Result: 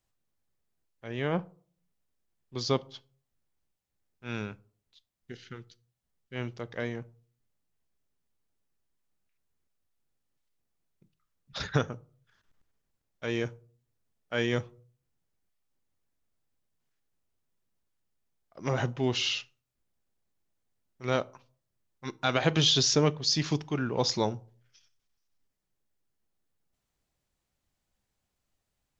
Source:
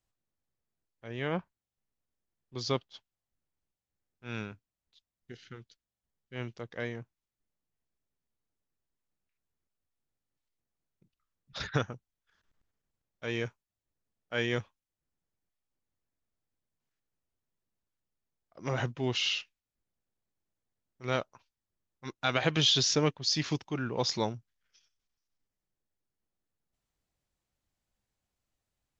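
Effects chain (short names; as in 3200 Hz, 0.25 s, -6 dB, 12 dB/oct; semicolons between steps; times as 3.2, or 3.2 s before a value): dynamic EQ 2300 Hz, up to -4 dB, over -42 dBFS, Q 0.82; on a send: reverb RT60 0.45 s, pre-delay 5 ms, DRR 17 dB; on the sum: gain +3.5 dB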